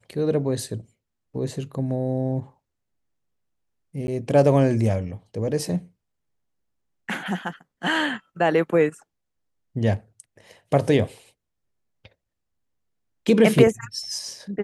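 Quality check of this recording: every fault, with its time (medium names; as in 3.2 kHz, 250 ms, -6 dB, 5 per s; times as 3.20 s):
4.07–4.08 s: dropout 10 ms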